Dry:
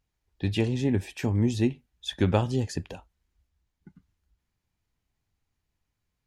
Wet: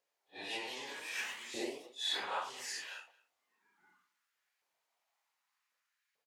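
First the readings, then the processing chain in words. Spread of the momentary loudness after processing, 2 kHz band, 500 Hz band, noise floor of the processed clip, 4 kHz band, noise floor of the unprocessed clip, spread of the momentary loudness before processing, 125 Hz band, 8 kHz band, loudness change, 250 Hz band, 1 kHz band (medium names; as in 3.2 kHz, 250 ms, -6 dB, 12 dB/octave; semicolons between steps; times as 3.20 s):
12 LU, -1.0 dB, -15.5 dB, under -85 dBFS, -0.5 dB, -82 dBFS, 12 LU, under -40 dB, -1.0 dB, -12.0 dB, -23.5 dB, -4.5 dB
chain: phase randomisation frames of 200 ms; bass shelf 330 Hz -6 dB; compression 6:1, threshold -32 dBFS, peak gain reduction 11 dB; LFO high-pass saw up 0.65 Hz 510–1800 Hz; ever faster or slower copies 236 ms, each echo +2 st, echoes 3, each echo -6 dB; echo from a far wall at 38 m, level -22 dB; attacks held to a fixed rise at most 370 dB/s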